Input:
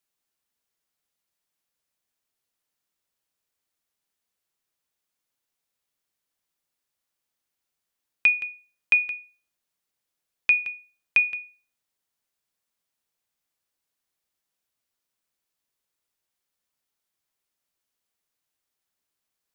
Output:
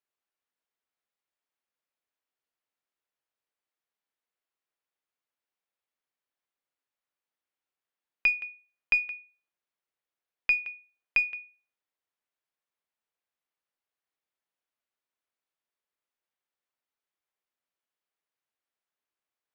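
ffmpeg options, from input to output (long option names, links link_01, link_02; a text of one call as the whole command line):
ffmpeg -i in.wav -af "aeval=exprs='0.335*(cos(1*acos(clip(val(0)/0.335,-1,1)))-cos(1*PI/2))+0.0473*(cos(2*acos(clip(val(0)/0.335,-1,1)))-cos(2*PI/2))+0.00596*(cos(7*acos(clip(val(0)/0.335,-1,1)))-cos(7*PI/2))':channel_layout=same,bass=frequency=250:gain=-10,treble=frequency=4000:gain=-13,volume=-3dB" out.wav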